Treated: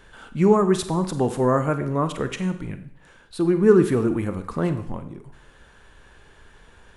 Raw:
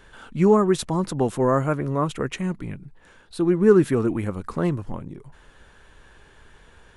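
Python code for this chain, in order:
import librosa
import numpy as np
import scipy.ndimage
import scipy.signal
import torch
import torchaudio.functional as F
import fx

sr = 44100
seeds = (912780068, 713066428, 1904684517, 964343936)

y = fx.rev_schroeder(x, sr, rt60_s=0.62, comb_ms=32, drr_db=9.5)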